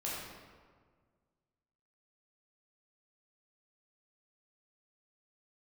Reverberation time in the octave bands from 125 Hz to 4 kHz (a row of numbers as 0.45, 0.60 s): 2.1, 2.0, 1.7, 1.6, 1.3, 1.0 s